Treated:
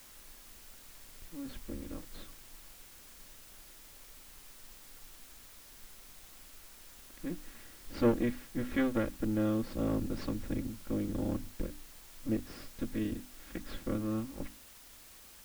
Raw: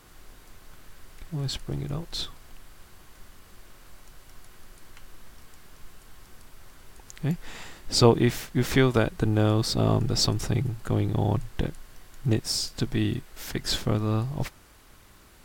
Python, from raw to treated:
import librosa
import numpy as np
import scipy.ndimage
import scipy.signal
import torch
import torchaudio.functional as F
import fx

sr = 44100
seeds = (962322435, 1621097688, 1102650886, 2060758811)

y = fx.lower_of_two(x, sr, delay_ms=3.6)
y = scipy.signal.sosfilt(scipy.signal.butter(2, 1800.0, 'lowpass', fs=sr, output='sos'), y)
y = fx.peak_eq(y, sr, hz=840.0, db=-10.5, octaves=0.99)
y = fx.hum_notches(y, sr, base_hz=50, count=6)
y = fx.quant_dither(y, sr, seeds[0], bits=8, dither='triangular')
y = F.gain(torch.from_numpy(y), -7.0).numpy()